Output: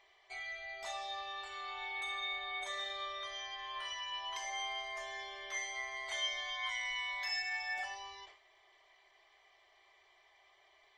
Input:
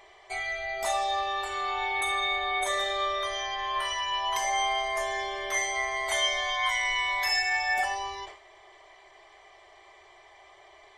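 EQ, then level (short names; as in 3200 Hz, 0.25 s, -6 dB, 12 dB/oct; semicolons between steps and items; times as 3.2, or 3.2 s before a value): air absorption 190 m; pre-emphasis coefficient 0.9; +2.0 dB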